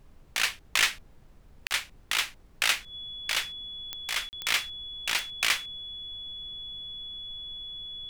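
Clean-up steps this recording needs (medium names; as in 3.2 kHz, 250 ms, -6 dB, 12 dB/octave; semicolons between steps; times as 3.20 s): de-click; band-stop 3.4 kHz, Q 30; interpolate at 1.67/4.29 s, 39 ms; noise print and reduce 21 dB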